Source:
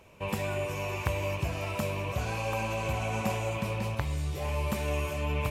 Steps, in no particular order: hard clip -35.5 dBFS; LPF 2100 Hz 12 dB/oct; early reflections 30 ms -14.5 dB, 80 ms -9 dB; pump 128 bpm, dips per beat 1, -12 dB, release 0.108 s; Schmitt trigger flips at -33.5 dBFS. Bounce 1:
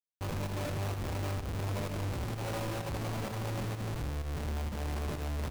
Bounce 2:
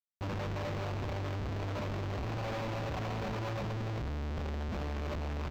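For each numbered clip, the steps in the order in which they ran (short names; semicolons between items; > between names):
LPF > Schmitt trigger > hard clip > pump > early reflections; pump > early reflections > Schmitt trigger > LPF > hard clip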